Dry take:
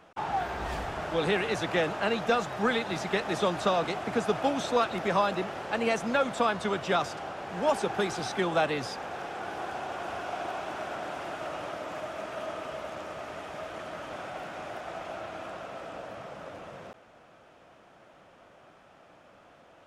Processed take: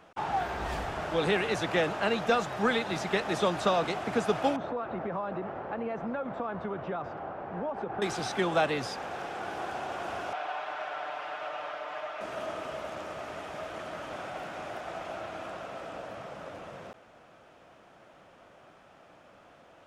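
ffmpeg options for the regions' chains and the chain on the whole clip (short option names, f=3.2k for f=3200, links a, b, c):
-filter_complex "[0:a]asettb=1/sr,asplit=3[a][b][c];[a]atrim=end=4.564[d];[b]atrim=start=4.56:end=8.02,asetpts=PTS-STARTPTS,afade=t=in:d=0.004:c=qsin,afade=t=out:st=3.456:d=0.004:c=qsin,lowpass=1.3k,acompressor=threshold=-30dB:ratio=6:attack=3.2:release=140:knee=1:detection=peak[e];[c]atrim=start=8.016[f];[d][e]acrossfade=d=0.004:c1=hsin:c2=qsin[g];[g][f]acrossfade=d=0.004:c1=qsin:c2=hsin,asettb=1/sr,asplit=3[h][i][j];[h]atrim=end=10.334[k];[i]atrim=start=10.33:end=12.21,asetpts=PTS-STARTPTS,afade=t=in:d=0.004:c=qsin,afade=t=out:st=1.876:d=0.004:c=qsin,acrossover=split=530 4400:gain=0.112 1 0.126[l][m][n];[l][m][n]amix=inputs=3:normalize=0,aecho=1:1:6.7:0.6,atrim=end_sample=82908[o];[j]atrim=start=12.206[p];[k][o]acrossfade=d=0.004:c1=hsin:c2=qsin[q];[q][p]acrossfade=d=0.004:c1=qsin:c2=hsin"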